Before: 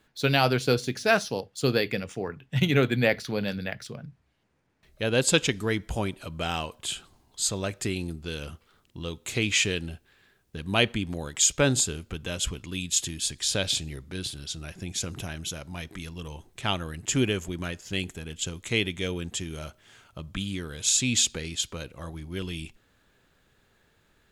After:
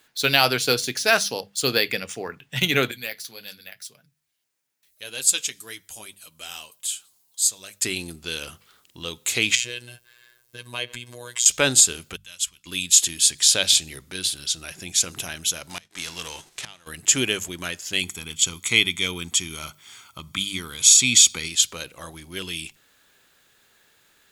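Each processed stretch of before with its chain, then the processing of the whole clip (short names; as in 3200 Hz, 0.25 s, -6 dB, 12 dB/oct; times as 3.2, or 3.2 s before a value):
2.91–7.82 pre-emphasis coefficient 0.8 + flange 1.8 Hz, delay 5.8 ms, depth 4.3 ms, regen -43%
9.55–11.46 comb 1.9 ms, depth 59% + compressor 3:1, threshold -32 dBFS + robotiser 121 Hz
12.16–12.66 passive tone stack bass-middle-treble 5-5-5 + notch 430 Hz, Q 7.1 + upward expander, over -46 dBFS
15.69–16.86 spectral whitening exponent 0.6 + LPF 7500 Hz + flipped gate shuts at -24 dBFS, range -24 dB
18.01–21.48 HPF 43 Hz + comb 0.9 ms, depth 54%
whole clip: tilt +3 dB/oct; notches 50/100/150/200 Hz; maximiser +4.5 dB; gain -1 dB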